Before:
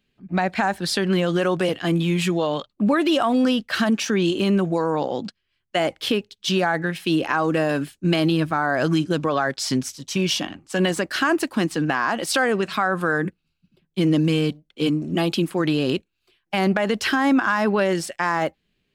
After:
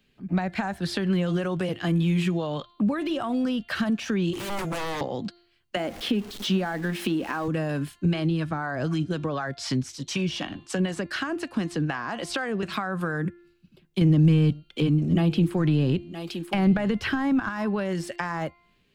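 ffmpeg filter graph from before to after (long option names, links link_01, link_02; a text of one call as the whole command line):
ffmpeg -i in.wav -filter_complex "[0:a]asettb=1/sr,asplit=3[link_01][link_02][link_03];[link_01]atrim=end=4.334[link_04];[link_02]atrim=start=4.33:end=5.01,asetpts=PTS-STARTPTS,afade=type=in:duration=0.004:curve=qsin,afade=type=out:start_time=0.676:duration=0.004:curve=qsin,aemphasis=mode=production:type=bsi,aeval=exprs='0.0501*(abs(mod(val(0)/0.0501+3,4)-2)-1)':channel_layout=same[link_05];[link_03]atrim=start=5.006[link_06];[link_04][link_05]acrossfade=duration=0.004:curve1=hsin:curve2=qsin[link_07];[link_07][link_06]acrossfade=duration=0.004:curve1=qsin:curve2=hsin,asettb=1/sr,asplit=3[link_08][link_09][link_10];[link_08]atrim=end=5.764[link_11];[link_09]atrim=start=5.76:end=7.48,asetpts=PTS-STARTPTS,afade=type=in:duration=0.004:curve=qsin,afade=type=out:start_time=1.716:duration=0.004:curve=qsin,aeval=exprs='val(0)+0.5*0.0266*sgn(val(0))':channel_layout=same,lowshelf=frequency=170:width_type=q:width=3:gain=-7[link_12];[link_10]atrim=start=7.476[link_13];[link_11][link_12]acrossfade=duration=0.004:curve1=hsin:curve2=qsin[link_14];[link_14][link_13]acrossfade=duration=0.004:curve1=qsin:curve2=hsin,asettb=1/sr,asplit=3[link_15][link_16][link_17];[link_15]atrim=end=8.054[link_18];[link_16]atrim=start=8.05:end=12.63,asetpts=PTS-STARTPTS,afade=type=in:duration=0.004:curve=qsin,afade=type=out:start_time=4.576:duration=0.004:curve=qsin,lowpass=9200,acrossover=split=600[link_19][link_20];[link_19]aeval=exprs='val(0)*(1-0.5/2+0.5/2*cos(2*PI*4*n/s))':channel_layout=same[link_21];[link_20]aeval=exprs='val(0)*(1-0.5/2-0.5/2*cos(2*PI*4*n/s))':channel_layout=same[link_22];[link_21][link_22]amix=inputs=2:normalize=0[link_23];[link_17]atrim=start=12.626[link_24];[link_18][link_23]acrossfade=duration=0.004:curve1=hsin:curve2=qsin[link_25];[link_25][link_24]acrossfade=duration=0.004:curve1=qsin:curve2=hsin,asettb=1/sr,asplit=3[link_26][link_27][link_28];[link_26]atrim=end=14.014[link_29];[link_27]atrim=start=14.01:end=17.49,asetpts=PTS-STARTPTS,afade=type=in:duration=0.004:curve=qsin,afade=type=out:start_time=3.476:duration=0.004:curve=qsin,acontrast=66,aecho=1:1:969:0.0891,atrim=end_sample=153468[link_30];[link_28]atrim=start=17.486[link_31];[link_29][link_30]acrossfade=duration=0.004:curve1=hsin:curve2=qsin[link_32];[link_32][link_31]acrossfade=duration=0.004:curve1=qsin:curve2=hsin,acrossover=split=3200[link_33][link_34];[link_34]acompressor=threshold=-35dB:ratio=4:attack=1:release=60[link_35];[link_33][link_35]amix=inputs=2:normalize=0,bandreject=frequency=347.4:width_type=h:width=4,bandreject=frequency=694.8:width_type=h:width=4,bandreject=frequency=1042.2:width_type=h:width=4,bandreject=frequency=1389.6:width_type=h:width=4,bandreject=frequency=1737:width_type=h:width=4,bandreject=frequency=2084.4:width_type=h:width=4,bandreject=frequency=2431.8:width_type=h:width=4,bandreject=frequency=2779.2:width_type=h:width=4,bandreject=frequency=3126.6:width_type=h:width=4,bandreject=frequency=3474:width_type=h:width=4,bandreject=frequency=3821.4:width_type=h:width=4,bandreject=frequency=4168.8:width_type=h:width=4,bandreject=frequency=4516.2:width_type=h:width=4,acrossover=split=150[link_36][link_37];[link_37]acompressor=threshold=-33dB:ratio=6[link_38];[link_36][link_38]amix=inputs=2:normalize=0,volume=5dB" out.wav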